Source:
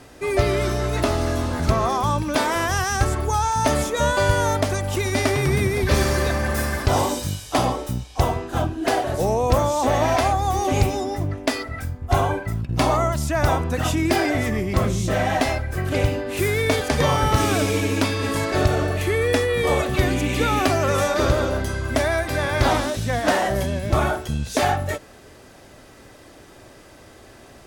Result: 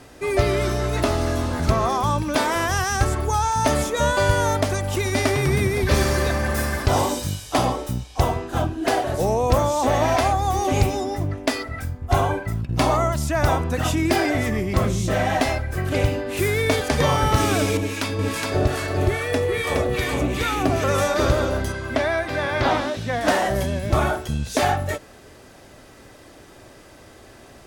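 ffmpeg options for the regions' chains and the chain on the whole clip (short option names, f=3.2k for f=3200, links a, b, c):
-filter_complex "[0:a]asettb=1/sr,asplit=3[a][b][c];[a]atrim=end=17.774[d];[b]atrim=start=17.77:end=20.84,asetpts=PTS-STARTPTS,afade=t=in:d=0.004:c=qsin,afade=t=out:st=3.066:d=0.004:c=qsin,aecho=1:1:417:0.708,atrim=end_sample=135387,acrossover=split=1000[e][f];[e]aeval=exprs='val(0)*(1-0.7/2+0.7/2*cos(2*PI*2.4*n/s))':c=same[g];[f]aeval=exprs='val(0)*(1-0.7/2-0.7/2*cos(2*PI*2.4*n/s))':c=same[h];[g][h]amix=inputs=2:normalize=0[i];[c]atrim=start=20.836[j];[d][i]acrossfade=d=0.004:c1=hsin:c2=qsin[k];[k][j]acrossfade=d=0.004:c1=qsin:c2=hsin,asettb=1/sr,asplit=3[l][m][n];[l]atrim=end=21.724[o];[m]atrim=start=21.72:end=23.21,asetpts=PTS-STARTPTS,afade=t=in:d=0.004:c=qsin,afade=t=out:st=1.486:d=0.004:c=qsin,highpass=f=150:p=1,acrossover=split=4900[p][q];[q]acompressor=threshold=-51dB:ratio=4:attack=1:release=60[r];[p][r]amix=inputs=2:normalize=0[s];[n]atrim=start=23.206[t];[o][s]acrossfade=d=0.004:c1=hsin:c2=qsin[u];[u][t]acrossfade=d=0.004:c1=qsin:c2=hsin"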